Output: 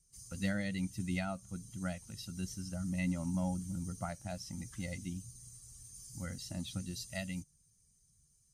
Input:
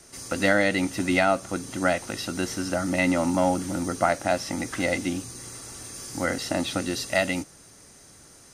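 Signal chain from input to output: expander on every frequency bin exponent 1.5; FFT filter 190 Hz 0 dB, 300 Hz -18 dB, 1.7 kHz -15 dB, 6 kHz -7 dB; trim -2 dB

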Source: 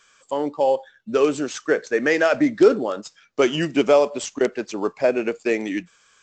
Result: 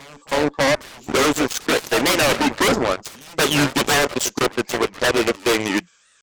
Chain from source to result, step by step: treble shelf 2.4 kHz +5.5 dB; wavefolder -17.5 dBFS; reverse echo 319 ms -8.5 dB; Chebyshev shaper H 7 -14 dB, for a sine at -14.5 dBFS; warped record 45 rpm, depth 250 cents; trim +5 dB

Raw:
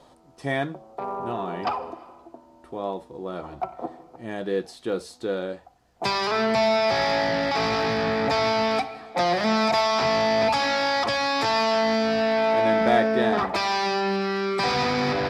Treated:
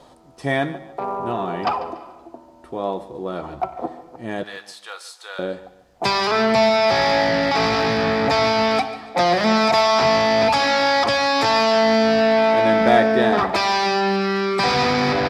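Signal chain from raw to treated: 4.43–5.39 s: high-pass 900 Hz 24 dB/octave; feedback delay 144 ms, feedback 33%, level -16.5 dB; trim +5 dB

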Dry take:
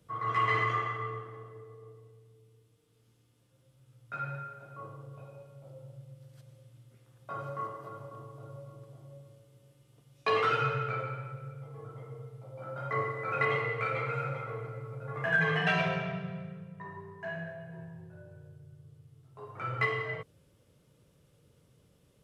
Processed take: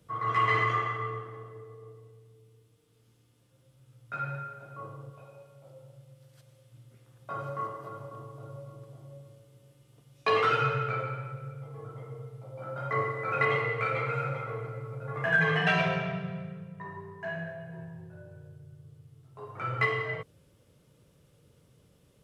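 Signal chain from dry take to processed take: 5.10–6.72 s: bass shelf 440 Hz -7.5 dB; trim +2.5 dB

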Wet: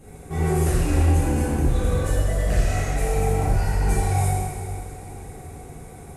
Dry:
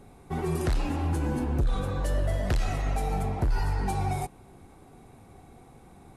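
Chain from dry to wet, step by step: graphic EQ 250/1000/4000/8000 Hz -6/-8/-8/+5 dB; peak limiter -26.5 dBFS, peak gain reduction 8 dB; echo that smears into a reverb 476 ms, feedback 55%, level -15 dB; plate-style reverb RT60 1.7 s, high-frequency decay 0.95×, DRR -10 dB; trim +3.5 dB

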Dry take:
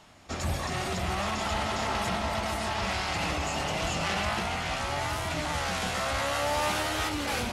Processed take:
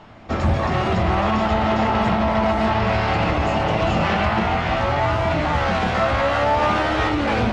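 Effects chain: tape spacing loss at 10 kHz 32 dB; hum notches 50/100 Hz; feedback comb 110 Hz, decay 0.4 s, harmonics all, mix 70%; loudness maximiser +30.5 dB; trim -9 dB

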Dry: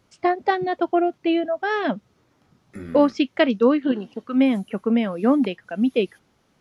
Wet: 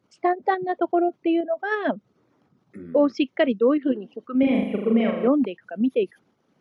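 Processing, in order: resonances exaggerated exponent 1.5; high-pass 150 Hz 12 dB/octave; 4.39–5.28 s: flutter echo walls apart 6.8 m, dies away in 1.1 s; in parallel at -2 dB: level held to a coarse grid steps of 22 dB; on the sum: trim -4.5 dB

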